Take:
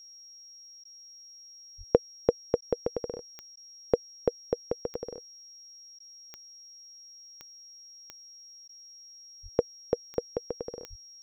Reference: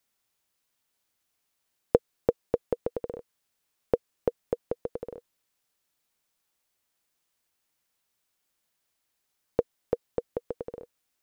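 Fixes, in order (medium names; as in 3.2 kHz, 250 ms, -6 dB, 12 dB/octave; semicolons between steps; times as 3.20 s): de-click; band-stop 5.6 kHz, Q 30; 1.77–1.89 s: high-pass 140 Hz 24 dB/octave; 9.42–9.54 s: high-pass 140 Hz 24 dB/octave; 10.89–11.01 s: high-pass 140 Hz 24 dB/octave; interpolate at 0.84/2.61/3.56/5.99/8.68 s, 10 ms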